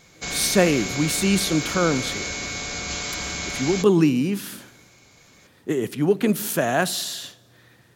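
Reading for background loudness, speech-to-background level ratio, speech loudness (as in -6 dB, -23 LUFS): -28.0 LUFS, 6.0 dB, -22.0 LUFS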